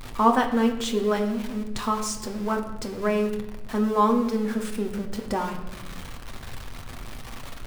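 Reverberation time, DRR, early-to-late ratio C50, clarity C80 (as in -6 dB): 1.1 s, 2.5 dB, 9.0 dB, 11.5 dB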